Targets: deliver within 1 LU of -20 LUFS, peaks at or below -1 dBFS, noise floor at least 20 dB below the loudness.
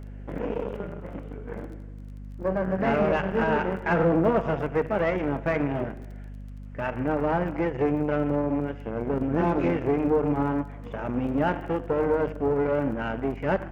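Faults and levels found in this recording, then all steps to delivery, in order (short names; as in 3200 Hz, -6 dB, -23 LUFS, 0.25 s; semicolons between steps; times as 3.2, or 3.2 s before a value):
ticks 24/s; hum 50 Hz; harmonics up to 250 Hz; hum level -37 dBFS; loudness -26.5 LUFS; peak -12.5 dBFS; loudness target -20.0 LUFS
-> de-click; notches 50/100/150/200/250 Hz; gain +6.5 dB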